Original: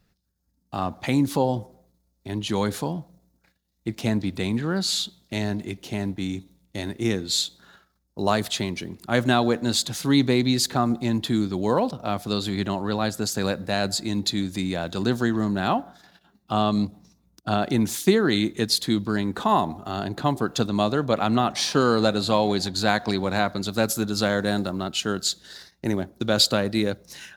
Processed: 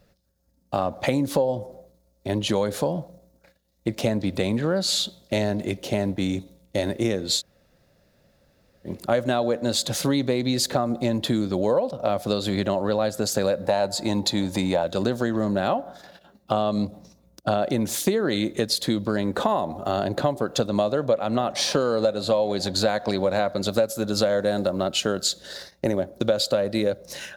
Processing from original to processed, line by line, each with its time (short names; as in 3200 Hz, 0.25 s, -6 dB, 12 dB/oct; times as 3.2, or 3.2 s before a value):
7.39–8.87 room tone, crossfade 0.06 s
13.65–14.83 bell 880 Hz +14 dB 0.4 oct
whole clip: bell 560 Hz +15 dB 0.44 oct; compressor 6:1, threshold -24 dBFS; gain +4.5 dB